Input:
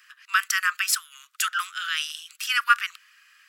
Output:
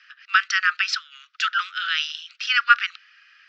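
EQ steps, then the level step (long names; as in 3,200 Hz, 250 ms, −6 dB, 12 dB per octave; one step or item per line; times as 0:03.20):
elliptic band-pass filter 1,300–5,500 Hz, stop band 40 dB
dynamic equaliser 4,000 Hz, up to +5 dB, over −50 dBFS, Q 5
high-frequency loss of the air 89 metres
+5.0 dB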